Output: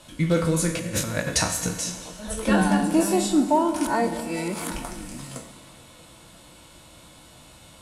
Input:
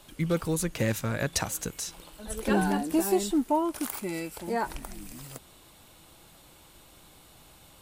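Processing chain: spectral trails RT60 0.32 s; LPF 11000 Hz 24 dB/oct; 0.79–1.27 negative-ratio compressor -33 dBFS, ratio -0.5; notch comb 400 Hz; 3.87–4.7 reverse; delay with a stepping band-pass 0.211 s, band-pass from 220 Hz, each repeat 0.7 oct, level -11 dB; Schroeder reverb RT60 1.6 s, combs from 30 ms, DRR 8.5 dB; gain +5.5 dB

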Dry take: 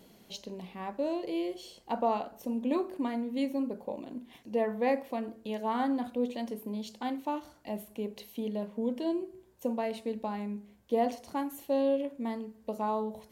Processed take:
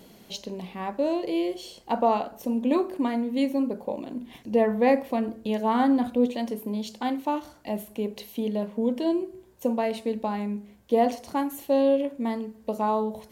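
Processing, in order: 4.2–6.27 low shelf 200 Hz +7 dB; gain +6.5 dB

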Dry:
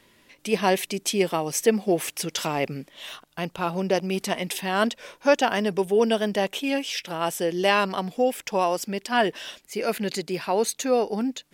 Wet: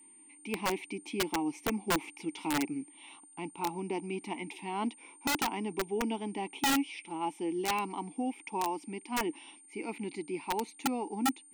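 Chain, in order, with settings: vowel filter u; whine 9000 Hz -59 dBFS; wrapped overs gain 27.5 dB; gain +4.5 dB

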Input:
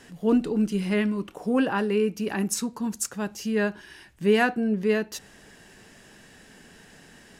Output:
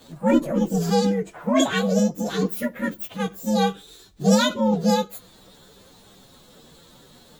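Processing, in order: inharmonic rescaling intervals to 129%; formant shift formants +4 st; gain +5.5 dB

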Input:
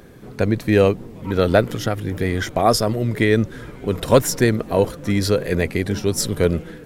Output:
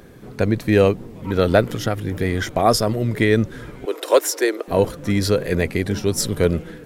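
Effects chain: 3.85–4.68 Chebyshev high-pass 320 Hz, order 5

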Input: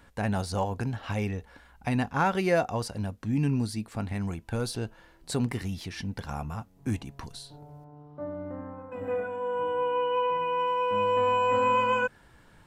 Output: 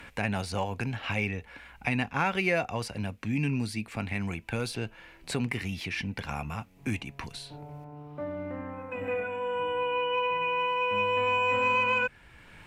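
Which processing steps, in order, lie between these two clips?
bell 2400 Hz +14 dB 0.71 oct; added harmonics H 5 -36 dB, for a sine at -10 dBFS; three-band squash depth 40%; gain -3.5 dB

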